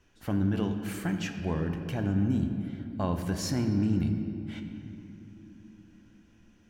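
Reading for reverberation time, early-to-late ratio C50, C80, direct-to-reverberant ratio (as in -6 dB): 2.9 s, 6.5 dB, 7.5 dB, 5.0 dB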